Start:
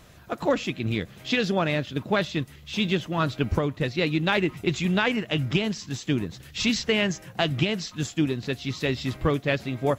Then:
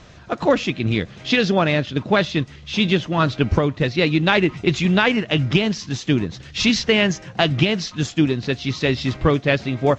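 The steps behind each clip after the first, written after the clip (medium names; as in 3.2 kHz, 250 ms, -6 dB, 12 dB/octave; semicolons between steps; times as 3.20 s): steep low-pass 6.7 kHz 36 dB/octave; trim +6.5 dB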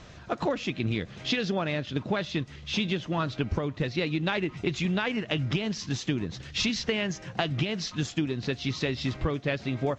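compression 5:1, threshold -22 dBFS, peak gain reduction 11 dB; trim -3 dB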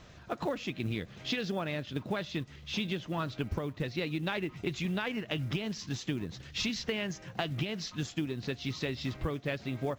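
short-mantissa float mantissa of 4-bit; trim -5.5 dB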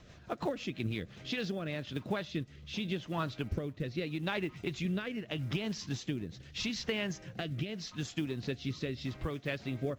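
rotary cabinet horn 6 Hz, later 0.8 Hz, at 0.88 s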